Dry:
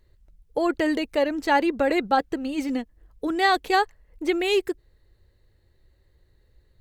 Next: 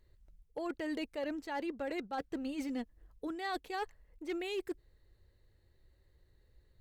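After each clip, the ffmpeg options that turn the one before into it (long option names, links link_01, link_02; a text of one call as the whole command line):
ffmpeg -i in.wav -af "areverse,acompressor=threshold=-28dB:ratio=16,areverse,volume=24.5dB,asoftclip=hard,volume=-24.5dB,volume=-6dB" out.wav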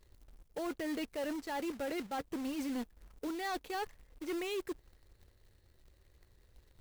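ffmpeg -i in.wav -af "acrusher=bits=2:mode=log:mix=0:aa=0.000001,volume=35dB,asoftclip=hard,volume=-35dB,volume=2dB" out.wav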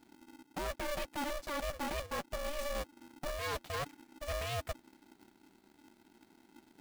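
ffmpeg -i in.wav -af "aeval=exprs='val(0)*sgn(sin(2*PI*290*n/s))':channel_layout=same" out.wav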